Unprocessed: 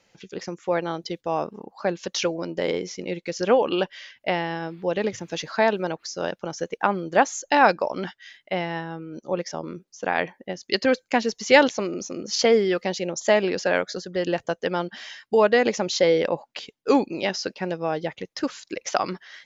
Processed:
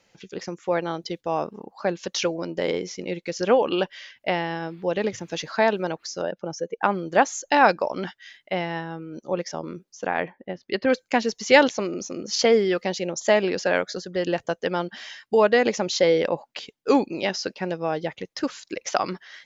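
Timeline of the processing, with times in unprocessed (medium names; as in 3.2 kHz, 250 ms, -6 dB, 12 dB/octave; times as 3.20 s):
6.22–6.83 s: spectral contrast enhancement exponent 1.5
10.07–10.90 s: distance through air 310 m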